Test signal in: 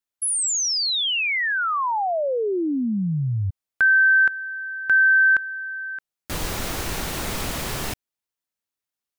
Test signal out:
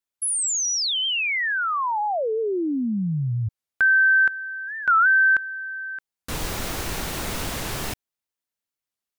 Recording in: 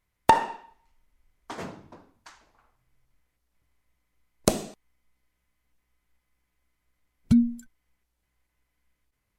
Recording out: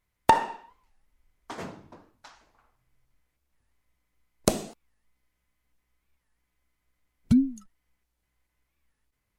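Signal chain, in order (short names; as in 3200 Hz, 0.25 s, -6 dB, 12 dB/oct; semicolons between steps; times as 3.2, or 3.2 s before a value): record warp 45 rpm, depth 250 cents; gain -1 dB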